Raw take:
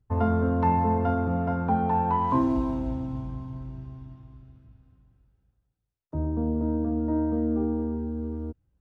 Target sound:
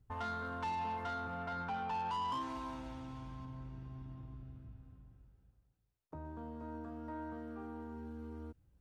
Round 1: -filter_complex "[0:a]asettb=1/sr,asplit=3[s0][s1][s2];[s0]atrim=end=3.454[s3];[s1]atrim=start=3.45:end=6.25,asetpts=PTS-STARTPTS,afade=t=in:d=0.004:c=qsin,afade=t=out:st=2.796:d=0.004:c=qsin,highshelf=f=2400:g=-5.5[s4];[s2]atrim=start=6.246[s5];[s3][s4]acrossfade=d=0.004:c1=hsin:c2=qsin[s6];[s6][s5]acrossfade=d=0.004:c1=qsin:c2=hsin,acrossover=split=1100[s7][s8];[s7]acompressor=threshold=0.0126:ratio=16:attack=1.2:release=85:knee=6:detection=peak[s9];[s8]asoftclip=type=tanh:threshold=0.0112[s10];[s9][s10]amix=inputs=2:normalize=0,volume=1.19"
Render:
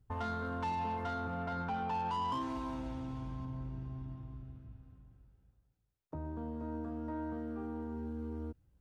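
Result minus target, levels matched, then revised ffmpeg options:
compression: peak gain reduction -6 dB
-filter_complex "[0:a]asettb=1/sr,asplit=3[s0][s1][s2];[s0]atrim=end=3.454[s3];[s1]atrim=start=3.45:end=6.25,asetpts=PTS-STARTPTS,afade=t=in:d=0.004:c=qsin,afade=t=out:st=2.796:d=0.004:c=qsin,highshelf=f=2400:g=-5.5[s4];[s2]atrim=start=6.246[s5];[s3][s4]acrossfade=d=0.004:c1=hsin:c2=qsin[s6];[s6][s5]acrossfade=d=0.004:c1=qsin:c2=hsin,acrossover=split=1100[s7][s8];[s7]acompressor=threshold=0.00596:ratio=16:attack=1.2:release=85:knee=6:detection=peak[s9];[s8]asoftclip=type=tanh:threshold=0.0112[s10];[s9][s10]amix=inputs=2:normalize=0,volume=1.19"

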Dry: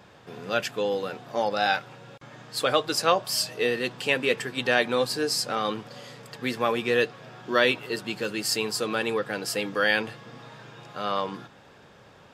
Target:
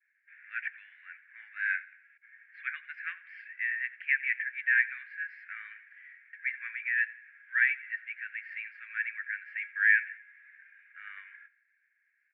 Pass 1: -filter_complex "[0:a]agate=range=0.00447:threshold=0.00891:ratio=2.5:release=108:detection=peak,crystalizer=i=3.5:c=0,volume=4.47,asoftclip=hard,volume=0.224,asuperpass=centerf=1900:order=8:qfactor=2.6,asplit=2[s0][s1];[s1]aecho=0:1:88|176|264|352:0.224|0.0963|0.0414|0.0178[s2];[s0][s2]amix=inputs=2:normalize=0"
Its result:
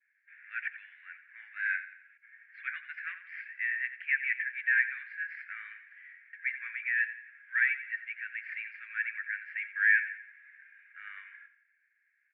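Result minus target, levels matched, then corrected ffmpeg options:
overload inside the chain: distortion +20 dB; echo-to-direct +6.5 dB
-filter_complex "[0:a]agate=range=0.00447:threshold=0.00891:ratio=2.5:release=108:detection=peak,crystalizer=i=3.5:c=0,volume=1.88,asoftclip=hard,volume=0.531,asuperpass=centerf=1900:order=8:qfactor=2.6,asplit=2[s0][s1];[s1]aecho=0:1:88|176|264:0.106|0.0455|0.0196[s2];[s0][s2]amix=inputs=2:normalize=0"

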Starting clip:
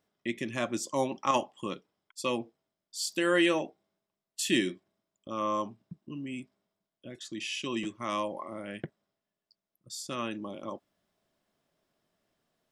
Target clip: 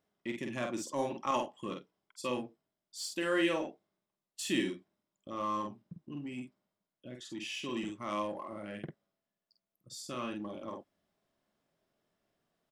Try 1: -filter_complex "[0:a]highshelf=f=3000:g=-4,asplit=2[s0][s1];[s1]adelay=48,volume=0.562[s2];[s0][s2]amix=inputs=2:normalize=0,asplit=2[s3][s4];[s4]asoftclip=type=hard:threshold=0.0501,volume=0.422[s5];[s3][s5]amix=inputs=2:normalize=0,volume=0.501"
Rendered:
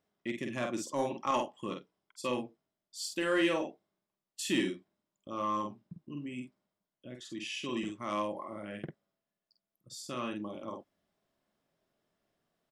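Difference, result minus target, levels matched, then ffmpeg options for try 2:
hard clipper: distortion -7 dB
-filter_complex "[0:a]highshelf=f=3000:g=-4,asplit=2[s0][s1];[s1]adelay=48,volume=0.562[s2];[s0][s2]amix=inputs=2:normalize=0,asplit=2[s3][s4];[s4]asoftclip=type=hard:threshold=0.0141,volume=0.422[s5];[s3][s5]amix=inputs=2:normalize=0,volume=0.501"

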